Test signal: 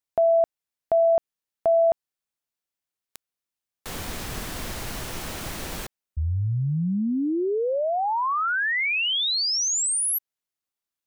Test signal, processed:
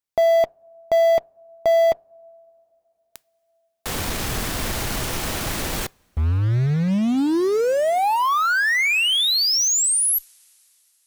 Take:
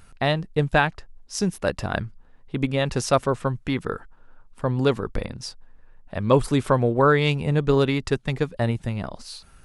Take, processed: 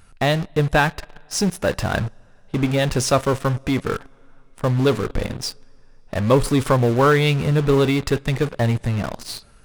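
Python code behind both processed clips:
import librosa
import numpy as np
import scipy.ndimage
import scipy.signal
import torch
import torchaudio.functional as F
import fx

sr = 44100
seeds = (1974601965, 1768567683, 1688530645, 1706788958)

p1 = fx.rev_double_slope(x, sr, seeds[0], early_s=0.25, late_s=3.7, knee_db=-21, drr_db=17.5)
p2 = fx.fuzz(p1, sr, gain_db=41.0, gate_db=-36.0)
y = p1 + (p2 * 10.0 ** (-12.0 / 20.0))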